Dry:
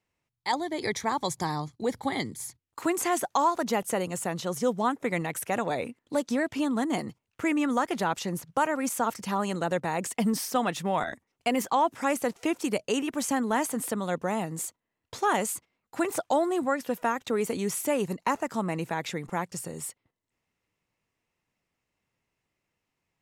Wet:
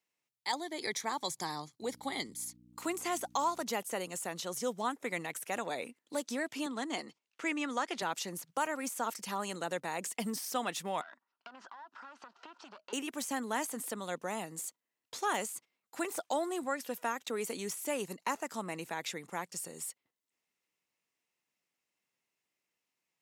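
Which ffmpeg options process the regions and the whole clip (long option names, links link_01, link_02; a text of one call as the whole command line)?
ffmpeg -i in.wav -filter_complex "[0:a]asettb=1/sr,asplit=3[link_01][link_02][link_03];[link_01]atrim=end=1.814[link_04];[link_02]atrim=start=1.81:end=3.63,asetpts=PTS-STARTPTS,afade=type=in:duration=0.004:curve=qsin,afade=type=out:start_time=1.816:duration=0.004:curve=qsin,equalizer=frequency=1700:width_type=o:width=0.21:gain=-5.5,aeval=exprs='val(0)+0.00891*(sin(2*PI*60*n/s)+sin(2*PI*2*60*n/s)/2+sin(2*PI*3*60*n/s)/3+sin(2*PI*4*60*n/s)/4+sin(2*PI*5*60*n/s)/5)':channel_layout=same[link_05];[link_03]atrim=start=3.626[link_06];[link_04][link_05]acrossfade=duration=0.004:curve1=hsin:curve2=qsin[link_07];[link_07][link_06]acrossfade=duration=0.004:curve1=qsin:curve2=hsin,asettb=1/sr,asplit=3[link_08][link_09][link_10];[link_08]atrim=end=6.664[link_11];[link_09]atrim=start=6.66:end=8.02,asetpts=PTS-STARTPTS,afade=type=in:duration=0.004:curve=qsin,afade=type=out:start_time=1.356:duration=0.004:curve=qsin,highpass=220,lowpass=4800,highshelf=frequency=3800:gain=7.5[link_12];[link_10]atrim=start=8.016[link_13];[link_11][link_12]acrossfade=duration=0.004:curve1=hsin:curve2=qsin[link_14];[link_14][link_13]acrossfade=duration=0.004:curve1=qsin:curve2=hsin,asettb=1/sr,asplit=3[link_15][link_16][link_17];[link_15]atrim=end=11.014[link_18];[link_16]atrim=start=11.01:end=12.93,asetpts=PTS-STARTPTS,afade=type=in:duration=0.004:curve=qsin,afade=type=out:start_time=1.916:duration=0.004:curve=qsin,aeval=exprs='clip(val(0),-1,0.0168)':channel_layout=same,highpass=300,equalizer=frequency=320:width_type=q:width=4:gain=-4,equalizer=frequency=470:width_type=q:width=4:gain=-10,equalizer=frequency=990:width_type=q:width=4:gain=8,equalizer=frequency=1400:width_type=q:width=4:gain=10,equalizer=frequency=2200:width_type=q:width=4:gain=-10,equalizer=frequency=3500:width_type=q:width=4:gain=-5,lowpass=frequency=4100:width=0.5412,lowpass=frequency=4100:width=1.3066,acompressor=threshold=-39dB:ratio=12:attack=3.2:release=140:knee=1:detection=peak[link_19];[link_17]atrim=start=12.926[link_20];[link_18][link_19]acrossfade=duration=0.004:curve1=hsin:curve2=qsin[link_21];[link_21][link_20]acrossfade=duration=0.004:curve1=qsin:curve2=hsin,deesser=0.65,highpass=210,highshelf=frequency=2300:gain=9.5,volume=-9dB" out.wav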